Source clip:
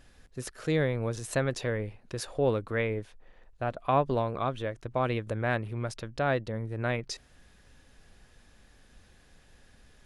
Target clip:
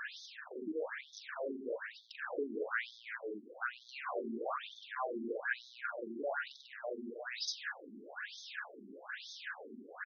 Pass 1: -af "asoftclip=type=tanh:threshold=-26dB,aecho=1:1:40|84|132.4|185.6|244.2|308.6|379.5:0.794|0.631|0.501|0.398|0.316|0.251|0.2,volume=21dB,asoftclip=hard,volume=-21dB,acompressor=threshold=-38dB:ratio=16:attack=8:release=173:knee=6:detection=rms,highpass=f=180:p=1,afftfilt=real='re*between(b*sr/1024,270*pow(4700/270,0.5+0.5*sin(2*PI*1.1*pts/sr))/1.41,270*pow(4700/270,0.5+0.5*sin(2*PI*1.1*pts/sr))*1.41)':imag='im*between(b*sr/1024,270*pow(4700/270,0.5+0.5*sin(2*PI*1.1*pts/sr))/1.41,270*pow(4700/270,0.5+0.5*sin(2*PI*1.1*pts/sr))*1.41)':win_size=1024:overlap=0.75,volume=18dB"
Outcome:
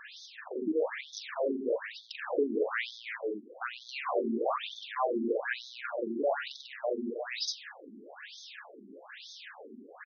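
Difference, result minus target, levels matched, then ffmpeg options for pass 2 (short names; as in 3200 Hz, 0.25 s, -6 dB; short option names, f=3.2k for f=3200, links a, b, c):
compressor: peak gain reduction -9.5 dB; 2000 Hz band -6.5 dB
-af "asoftclip=type=tanh:threshold=-26dB,aecho=1:1:40|84|132.4|185.6|244.2|308.6|379.5:0.794|0.631|0.501|0.398|0.316|0.251|0.2,volume=21dB,asoftclip=hard,volume=-21dB,acompressor=threshold=-48dB:ratio=16:attack=8:release=173:knee=6:detection=rms,highpass=f=180:p=1,equalizer=f=1.5k:w=2.9:g=11,afftfilt=real='re*between(b*sr/1024,270*pow(4700/270,0.5+0.5*sin(2*PI*1.1*pts/sr))/1.41,270*pow(4700/270,0.5+0.5*sin(2*PI*1.1*pts/sr))*1.41)':imag='im*between(b*sr/1024,270*pow(4700/270,0.5+0.5*sin(2*PI*1.1*pts/sr))/1.41,270*pow(4700/270,0.5+0.5*sin(2*PI*1.1*pts/sr))*1.41)':win_size=1024:overlap=0.75,volume=18dB"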